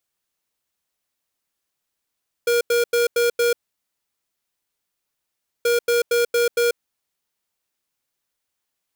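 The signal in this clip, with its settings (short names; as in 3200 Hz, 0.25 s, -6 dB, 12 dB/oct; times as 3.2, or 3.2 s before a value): beep pattern square 475 Hz, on 0.14 s, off 0.09 s, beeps 5, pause 2.12 s, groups 2, -18 dBFS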